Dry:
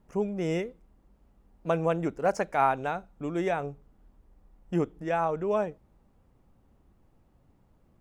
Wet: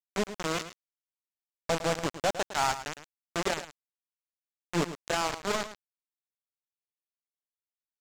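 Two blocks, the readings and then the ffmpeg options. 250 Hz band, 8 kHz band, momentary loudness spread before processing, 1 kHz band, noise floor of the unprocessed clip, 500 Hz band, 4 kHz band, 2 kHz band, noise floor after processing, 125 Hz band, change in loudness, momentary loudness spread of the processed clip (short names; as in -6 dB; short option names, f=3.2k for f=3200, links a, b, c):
-5.0 dB, +14.5 dB, 9 LU, -3.0 dB, -65 dBFS, -4.5 dB, +14.0 dB, +2.0 dB, under -85 dBFS, -4.5 dB, -2.0 dB, 12 LU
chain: -filter_complex "[0:a]aeval=exprs='val(0)+0.5*0.0188*sgn(val(0))':c=same,lowpass=4.7k,bandreject=f=60:t=h:w=6,bandreject=f=120:t=h:w=6,bandreject=f=180:t=h:w=6,bandreject=f=240:t=h:w=6,adynamicequalizer=threshold=0.0112:dfrequency=650:dqfactor=3:tfrequency=650:tqfactor=3:attack=5:release=100:ratio=0.375:range=2:mode=cutabove:tftype=bell,aresample=16000,acrusher=bits=3:mix=0:aa=0.000001,aresample=44100,aeval=exprs='0.355*(cos(1*acos(clip(val(0)/0.355,-1,1)))-cos(1*PI/2))+0.0251*(cos(8*acos(clip(val(0)/0.355,-1,1)))-cos(8*PI/2))':c=same,asoftclip=type=tanh:threshold=-19.5dB,asplit=2[a][b];[b]aecho=0:1:108:0.237[c];[a][c]amix=inputs=2:normalize=0"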